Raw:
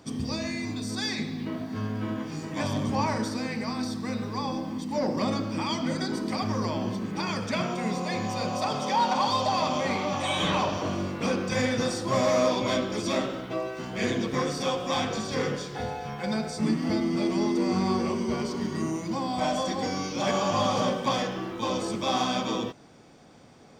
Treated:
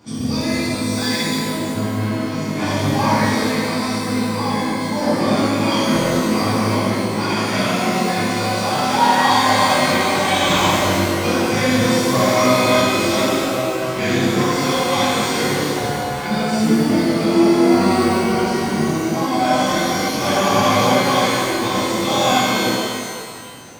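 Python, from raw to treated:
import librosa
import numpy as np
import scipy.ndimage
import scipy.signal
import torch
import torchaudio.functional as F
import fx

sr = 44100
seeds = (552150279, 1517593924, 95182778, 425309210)

y = fx.buffer_glitch(x, sr, at_s=(5.91, 19.72, 22.07), block=1024, repeats=7)
y = fx.rev_shimmer(y, sr, seeds[0], rt60_s=1.9, semitones=12, shimmer_db=-8, drr_db=-11.0)
y = y * 10.0 ** (-1.0 / 20.0)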